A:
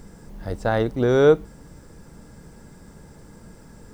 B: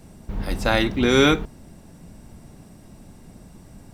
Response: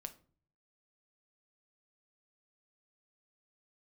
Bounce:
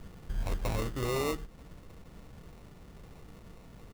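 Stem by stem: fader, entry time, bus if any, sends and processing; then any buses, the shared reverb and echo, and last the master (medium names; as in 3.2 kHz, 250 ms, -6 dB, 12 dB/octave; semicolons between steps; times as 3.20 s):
-4.0 dB, 0.00 s, no send, low-pass 2.1 kHz 24 dB/octave; compression, threshold -25 dBFS, peak gain reduction 14 dB
-13.0 dB, 6.5 ms, send -10 dB, bass shelf 220 Hz +9 dB; auto duck -13 dB, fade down 1.40 s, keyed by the first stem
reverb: on, RT60 0.45 s, pre-delay 6 ms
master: peaking EQ 220 Hz -5 dB 1.3 oct; sample-rate reducer 1.6 kHz, jitter 0%; wavefolder -24.5 dBFS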